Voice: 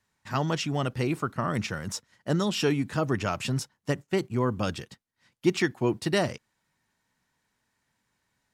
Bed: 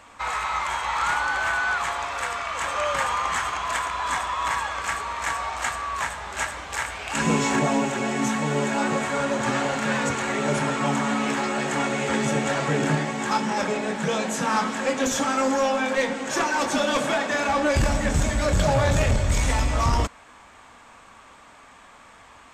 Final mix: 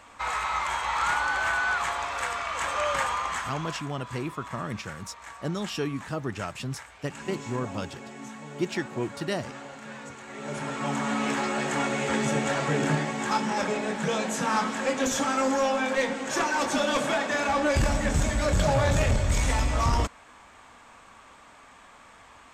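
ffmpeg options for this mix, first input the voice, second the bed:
ffmpeg -i stem1.wav -i stem2.wav -filter_complex "[0:a]adelay=3150,volume=-5dB[link_01];[1:a]volume=12.5dB,afade=type=out:start_time=2.94:duration=0.97:silence=0.177828,afade=type=in:start_time=10.27:duration=1:silence=0.188365[link_02];[link_01][link_02]amix=inputs=2:normalize=0" out.wav

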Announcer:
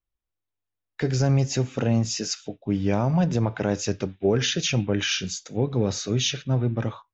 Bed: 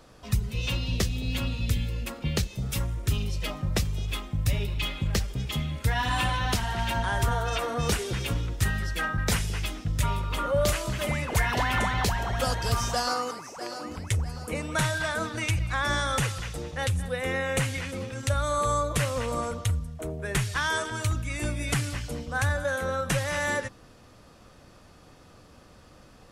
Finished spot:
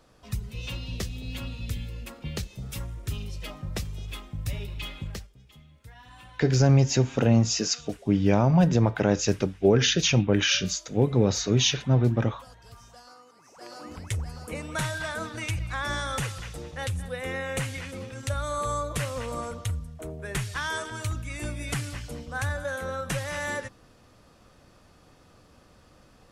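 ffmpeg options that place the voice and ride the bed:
ffmpeg -i stem1.wav -i stem2.wav -filter_complex "[0:a]adelay=5400,volume=2dB[link_01];[1:a]volume=13.5dB,afade=type=out:start_time=5.01:duration=0.29:silence=0.141254,afade=type=in:start_time=13.32:duration=0.63:silence=0.105925[link_02];[link_01][link_02]amix=inputs=2:normalize=0" out.wav

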